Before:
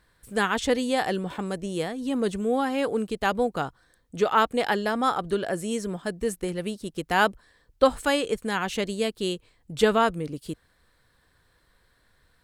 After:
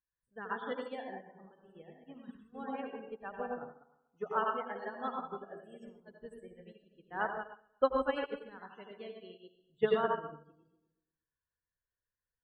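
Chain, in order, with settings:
feedback delay that plays each chunk backwards 120 ms, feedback 46%, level −4.5 dB
high-shelf EQ 3,600 Hz −5 dB
gain on a spectral selection 0:02.17–0:02.55, 360–870 Hz −20 dB
low-shelf EQ 440 Hz −4.5 dB
spectral peaks only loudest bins 32
convolution reverb RT60 0.40 s, pre-delay 80 ms, DRR 1.5 dB
expander for the loud parts 2.5 to 1, over −33 dBFS
level −6 dB

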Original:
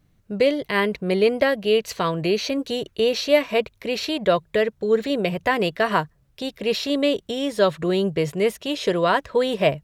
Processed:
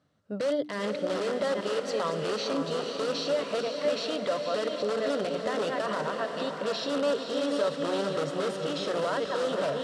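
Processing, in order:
delay that plays each chunk backwards 402 ms, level −9.5 dB
in parallel at −4 dB: wrap-around overflow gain 16.5 dB
on the sum: parametric band 330 Hz −12.5 dB 0.35 octaves
brickwall limiter −17.5 dBFS, peak gain reduction 12 dB
loudspeaker in its box 170–7,900 Hz, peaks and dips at 180 Hz −3 dB, 310 Hz +8 dB, 580 Hz +7 dB, 1,300 Hz +6 dB, 2,300 Hz −8 dB, 6,600 Hz −6 dB
mains-hum notches 60/120/180/240/300 Hz
on a send: feedback delay with all-pass diffusion 509 ms, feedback 56%, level −6 dB
on the sum: level −7 dB

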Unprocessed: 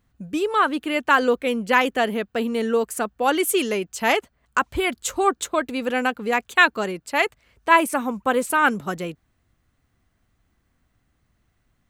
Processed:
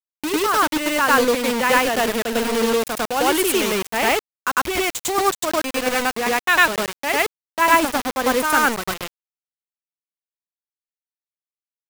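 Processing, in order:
bit reduction 4 bits
backwards echo 101 ms −3 dB

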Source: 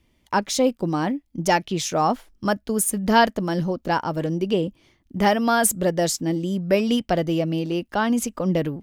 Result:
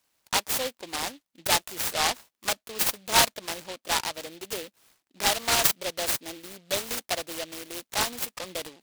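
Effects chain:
high-pass filter 970 Hz 12 dB per octave
short delay modulated by noise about 3,000 Hz, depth 0.18 ms

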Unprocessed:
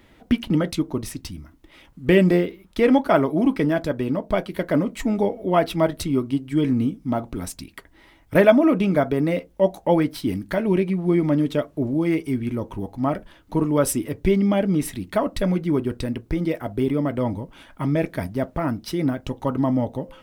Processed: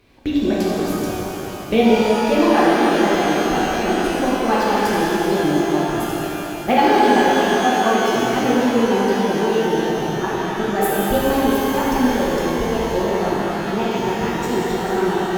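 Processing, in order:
gliding playback speed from 120% → 143%
reverb with rising layers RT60 3.7 s, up +12 semitones, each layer −8 dB, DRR −7 dB
level −4.5 dB

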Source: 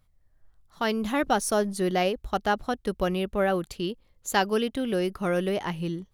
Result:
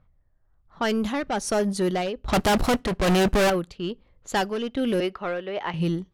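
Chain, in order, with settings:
in parallel at −7.5 dB: wave folding −19 dBFS
0:02.28–0:03.50: on the sum: leveller curve on the samples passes 5
0:05.00–0:05.74: three-way crossover with the lows and the highs turned down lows −13 dB, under 390 Hz, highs −13 dB, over 4,000 Hz
harmonic generator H 7 −25 dB, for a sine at −11 dBFS
soft clipping −21.5 dBFS, distortion −10 dB
amplitude tremolo 1.2 Hz, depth 64%
brickwall limiter −25.5 dBFS, peak gain reduction 4 dB
on a send at −23 dB: convolution reverb RT60 0.30 s, pre-delay 3 ms
on the sum: low-pass that shuts in the quiet parts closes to 1,700 Hz, open at −27 dBFS
level +7.5 dB

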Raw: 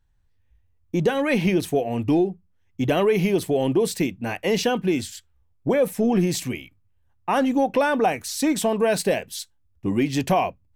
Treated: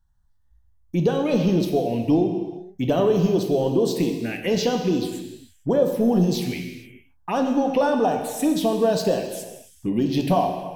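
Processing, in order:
phaser swept by the level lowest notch 410 Hz, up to 2,200 Hz, full sweep at −17.5 dBFS
reverb whose tail is shaped and stops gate 490 ms falling, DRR 3.5 dB

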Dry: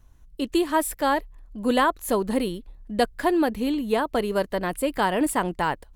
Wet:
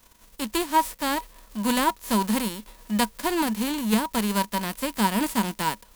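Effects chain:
spectral envelope flattened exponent 0.3
hollow resonant body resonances 210/960 Hz, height 14 dB, ringing for 95 ms
level −5 dB

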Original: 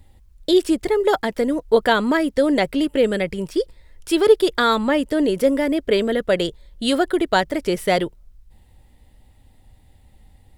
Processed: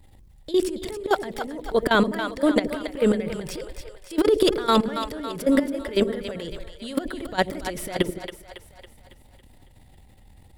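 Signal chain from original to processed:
transient designer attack −8 dB, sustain +10 dB
output level in coarse steps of 17 dB
echo with a time of its own for lows and highs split 500 Hz, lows 80 ms, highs 277 ms, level −8.5 dB

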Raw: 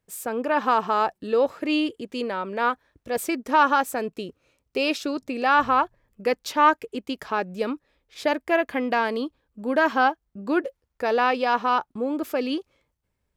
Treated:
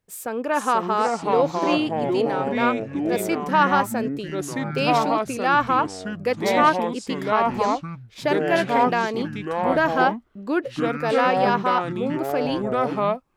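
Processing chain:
delay with pitch and tempo change per echo 419 ms, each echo −4 semitones, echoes 3

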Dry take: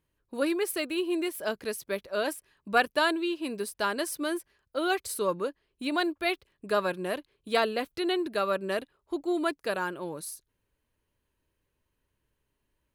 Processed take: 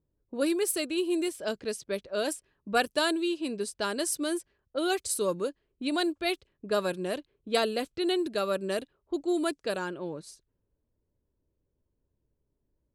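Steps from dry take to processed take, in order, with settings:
graphic EQ with 10 bands 1,000 Hz −6 dB, 2,000 Hz −5 dB, 8,000 Hz +9 dB, 16,000 Hz −3 dB
low-pass that shuts in the quiet parts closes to 780 Hz, open at −26.5 dBFS
level +1.5 dB

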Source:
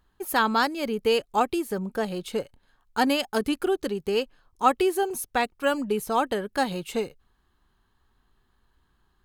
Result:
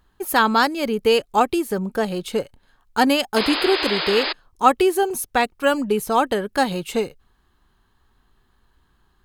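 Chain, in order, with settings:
sound drawn into the spectrogram noise, 0:03.36–0:04.33, 280–5,100 Hz −30 dBFS
level +5.5 dB

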